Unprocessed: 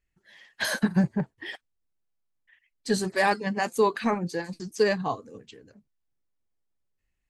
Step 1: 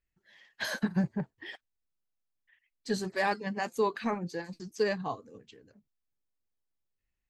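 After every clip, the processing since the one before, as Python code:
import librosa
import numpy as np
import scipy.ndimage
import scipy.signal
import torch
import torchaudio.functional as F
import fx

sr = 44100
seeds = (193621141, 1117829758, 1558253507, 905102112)

y = fx.peak_eq(x, sr, hz=9500.0, db=-12.0, octaves=0.32)
y = F.gain(torch.from_numpy(y), -6.0).numpy()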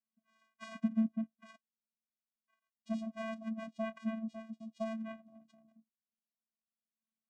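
y = fx.vocoder(x, sr, bands=4, carrier='square', carrier_hz=222.0)
y = F.gain(torch.from_numpy(y), -5.5).numpy()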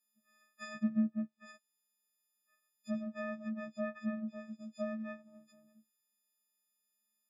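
y = fx.freq_snap(x, sr, grid_st=6)
y = fx.env_lowpass_down(y, sr, base_hz=2100.0, full_db=-35.0)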